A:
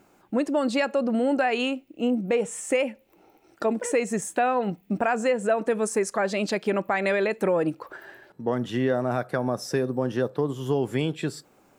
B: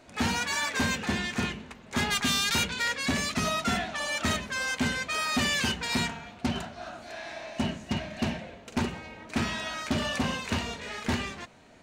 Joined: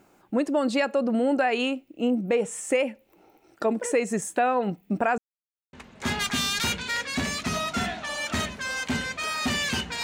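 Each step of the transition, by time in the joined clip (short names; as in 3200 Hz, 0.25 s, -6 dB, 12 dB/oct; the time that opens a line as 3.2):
A
5.18–5.73 mute
5.73 switch to B from 1.64 s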